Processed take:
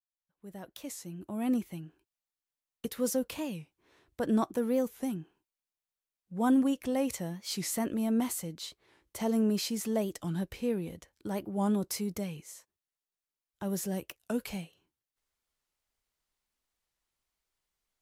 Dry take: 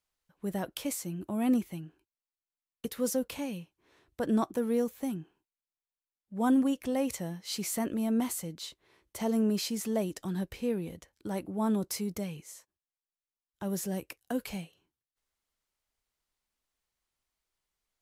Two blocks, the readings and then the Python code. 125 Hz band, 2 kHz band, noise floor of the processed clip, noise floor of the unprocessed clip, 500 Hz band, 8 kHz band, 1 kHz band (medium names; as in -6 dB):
0.0 dB, -0.5 dB, under -85 dBFS, under -85 dBFS, 0.0 dB, -0.5 dB, -0.5 dB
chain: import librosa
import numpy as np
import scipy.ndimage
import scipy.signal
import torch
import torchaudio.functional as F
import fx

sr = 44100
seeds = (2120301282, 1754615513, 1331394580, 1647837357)

y = fx.fade_in_head(x, sr, length_s=2.07)
y = fx.record_warp(y, sr, rpm=45.0, depth_cents=160.0)